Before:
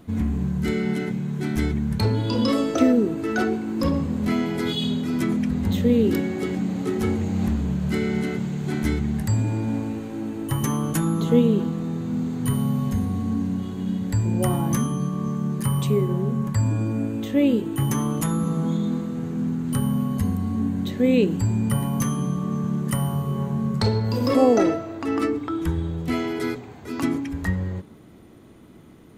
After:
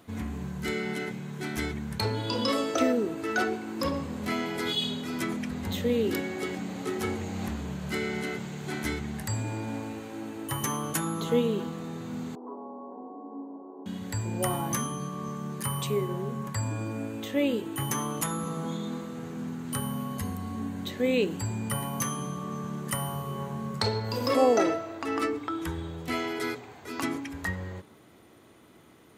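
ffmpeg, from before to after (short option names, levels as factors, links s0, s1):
-filter_complex "[0:a]asettb=1/sr,asplit=3[s0][s1][s2];[s0]atrim=end=12.354[s3];[s1]atrim=start=12.35:end=13.86,asetpts=PTS-STARTPTS,afade=t=in:d=0.004:c=qsin,afade=t=out:st=1.506:d=0.004:c=qsin,asuperpass=centerf=530:order=12:qfactor=0.68[s4];[s2]atrim=start=13.856[s5];[s3][s4]acrossfade=d=0.004:c1=hsin:c2=qsin[s6];[s6][s5]acrossfade=d=0.004:c1=qsin:c2=hsin,highpass=110,equalizer=f=190:w=0.62:g=-11"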